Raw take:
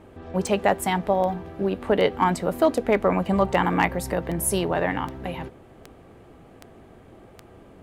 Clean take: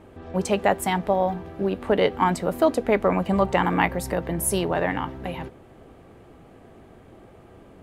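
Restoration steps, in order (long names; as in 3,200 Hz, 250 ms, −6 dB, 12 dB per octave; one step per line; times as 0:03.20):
clipped peaks rebuilt −8.5 dBFS
click removal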